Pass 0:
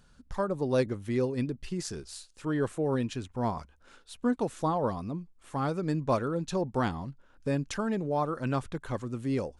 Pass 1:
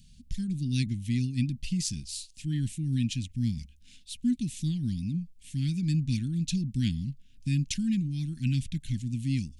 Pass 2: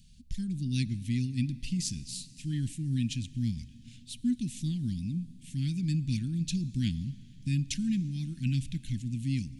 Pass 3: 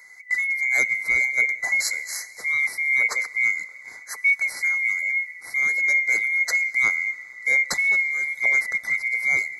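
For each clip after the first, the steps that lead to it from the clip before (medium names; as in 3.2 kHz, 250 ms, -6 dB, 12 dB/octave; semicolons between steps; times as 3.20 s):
inverse Chebyshev band-stop 440–1300 Hz, stop band 50 dB; trim +6.5 dB
plate-style reverb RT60 4.2 s, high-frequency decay 0.85×, DRR 17.5 dB; trim -2 dB
split-band scrambler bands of 2 kHz; trim +8.5 dB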